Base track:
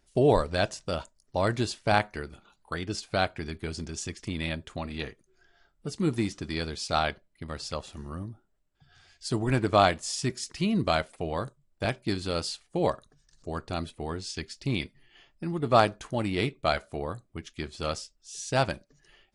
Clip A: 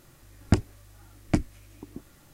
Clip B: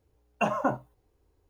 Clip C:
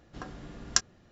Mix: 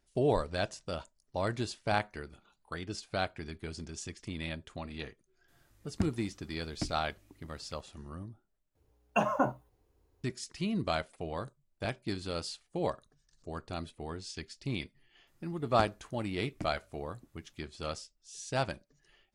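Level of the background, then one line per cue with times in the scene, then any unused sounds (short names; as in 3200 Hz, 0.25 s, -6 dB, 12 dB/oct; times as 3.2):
base track -6.5 dB
5.48 add A -13 dB
8.75 replace with B -1.5 dB
15.27 add A -17.5 dB
not used: C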